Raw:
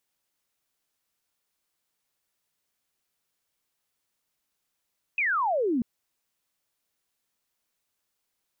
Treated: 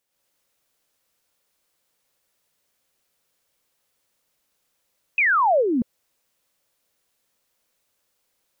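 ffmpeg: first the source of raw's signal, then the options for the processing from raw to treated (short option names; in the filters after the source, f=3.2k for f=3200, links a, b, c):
-f lavfi -i "aevalsrc='0.075*clip(t/0.002,0,1)*clip((0.64-t)/0.002,0,1)*sin(2*PI*2600*0.64/log(220/2600)*(exp(log(220/2600)*t/0.64)-1))':d=0.64:s=44100"
-af "equalizer=f=530:w=4:g=7,alimiter=limit=-21.5dB:level=0:latency=1:release=333,dynaudnorm=f=100:g=3:m=7dB"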